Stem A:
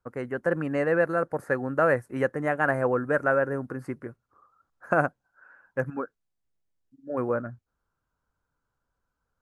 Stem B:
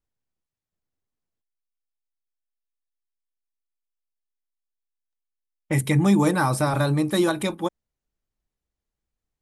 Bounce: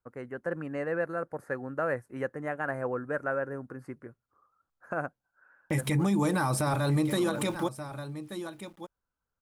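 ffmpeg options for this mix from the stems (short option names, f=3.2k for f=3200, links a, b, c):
-filter_complex "[0:a]volume=-7.5dB,asplit=2[a][b];[1:a]aeval=exprs='val(0)*gte(abs(val(0)),0.0075)':c=same,volume=0.5dB,asplit=2[c][d];[d]volume=-17.5dB[e];[b]apad=whole_len=415213[f];[c][f]sidechaincompress=threshold=-33dB:ratio=8:attack=16:release=189[g];[e]aecho=0:1:1180:1[h];[a][g][h]amix=inputs=3:normalize=0,alimiter=limit=-19dB:level=0:latency=1:release=93"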